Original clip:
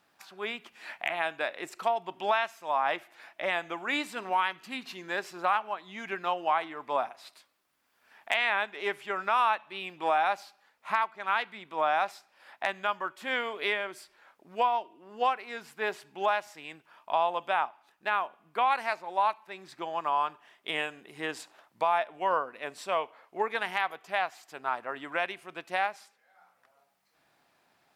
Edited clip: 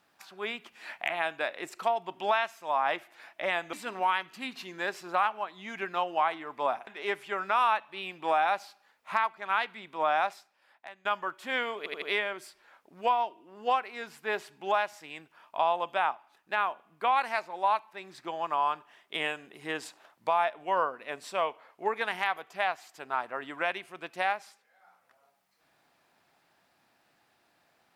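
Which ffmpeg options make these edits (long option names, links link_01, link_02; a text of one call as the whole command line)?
ffmpeg -i in.wav -filter_complex "[0:a]asplit=7[link_01][link_02][link_03][link_04][link_05][link_06][link_07];[link_01]atrim=end=3.732[link_08];[link_02]atrim=start=4.028:end=7.172[link_09];[link_03]atrim=start=8.648:end=12.83,asetpts=PTS-STARTPTS,afade=type=out:start_time=3.362:duration=0.82:curve=qua:silence=0.133352[link_10];[link_04]atrim=start=12.83:end=13.642,asetpts=PTS-STARTPTS,afade=type=in:duration=0.004:curve=hsin:silence=0.133352[link_11];[link_05]atrim=start=13.558:end=13.642[link_12];[link_06]atrim=start=13.558:end=13.642[link_13];[link_07]atrim=start=13.558[link_14];[link_08][link_09]acrossfade=duration=0.004:curve1=hsin:curve2=hsin[link_15];[link_10][link_11]concat=n=2:v=0:a=1[link_16];[link_15][link_16]acrossfade=duration=0.004:curve1=hsin:curve2=hsin[link_17];[link_17][link_12]acrossfade=duration=0.004:curve1=hsin:curve2=hsin[link_18];[link_18][link_13]acrossfade=duration=0.004:curve1=hsin:curve2=hsin[link_19];[link_19][link_14]acrossfade=duration=0.004:curve1=hsin:curve2=hsin" out.wav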